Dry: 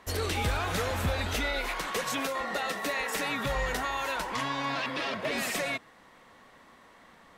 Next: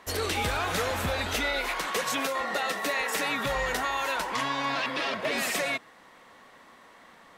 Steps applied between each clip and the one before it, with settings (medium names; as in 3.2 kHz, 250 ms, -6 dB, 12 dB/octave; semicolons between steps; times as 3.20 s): bass shelf 170 Hz -8.5 dB; trim +3 dB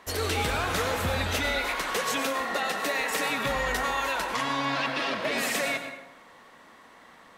plate-style reverb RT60 0.92 s, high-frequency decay 0.65×, pre-delay 80 ms, DRR 6.5 dB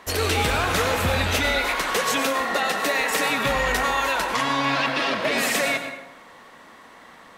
rattle on loud lows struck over -35 dBFS, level -26 dBFS; trim +5.5 dB